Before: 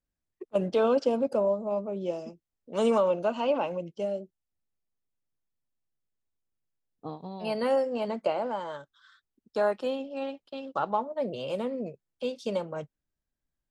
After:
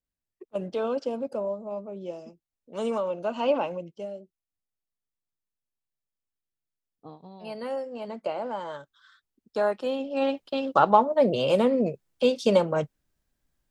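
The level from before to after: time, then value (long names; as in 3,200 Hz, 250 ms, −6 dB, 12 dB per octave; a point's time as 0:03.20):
0:03.15 −4.5 dB
0:03.49 +3 dB
0:04.15 −6.5 dB
0:07.91 −6.5 dB
0:08.67 +1 dB
0:09.85 +1 dB
0:10.30 +10 dB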